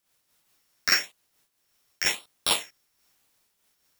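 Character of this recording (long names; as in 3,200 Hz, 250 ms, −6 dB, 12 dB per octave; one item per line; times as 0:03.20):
a buzz of ramps at a fixed pitch in blocks of 8 samples
phaser sweep stages 6, 0.95 Hz, lowest notch 800–2,000 Hz
a quantiser's noise floor 12 bits, dither triangular
amplitude modulation by smooth noise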